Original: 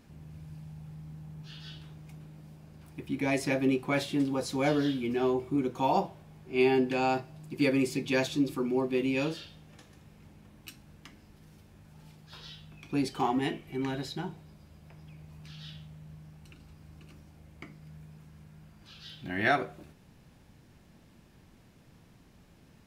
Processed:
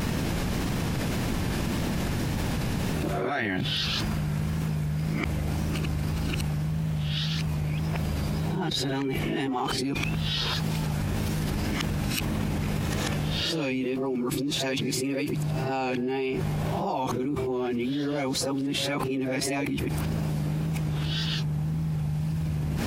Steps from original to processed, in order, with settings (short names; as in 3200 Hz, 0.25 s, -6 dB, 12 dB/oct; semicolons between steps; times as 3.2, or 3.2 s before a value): whole clip reversed; vibrato 1.8 Hz 47 cents; fast leveller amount 100%; gain -6.5 dB